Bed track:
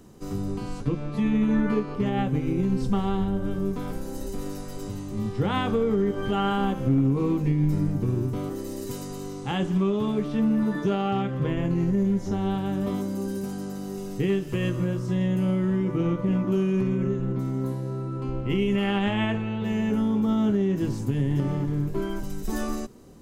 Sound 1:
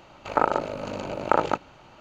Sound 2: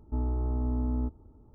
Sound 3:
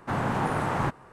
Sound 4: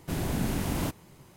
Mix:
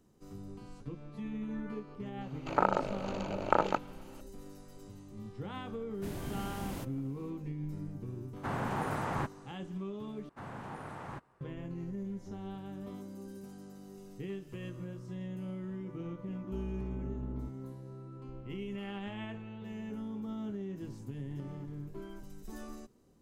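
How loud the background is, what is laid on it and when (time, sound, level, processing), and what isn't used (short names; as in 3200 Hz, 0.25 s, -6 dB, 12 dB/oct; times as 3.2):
bed track -16.5 dB
2.21 add 1 -6 dB
5.94 add 4 -11 dB
8.36 add 3 -7.5 dB
10.29 replace with 3 -17 dB
16.4 add 2 -11.5 dB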